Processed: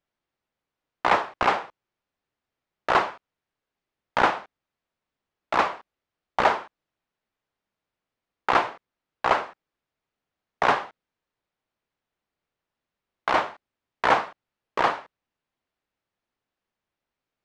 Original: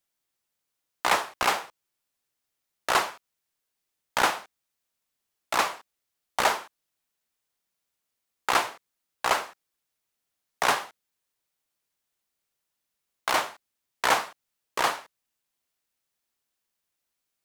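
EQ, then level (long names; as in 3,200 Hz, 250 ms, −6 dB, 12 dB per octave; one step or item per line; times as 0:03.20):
head-to-tape spacing loss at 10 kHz 30 dB
+6.5 dB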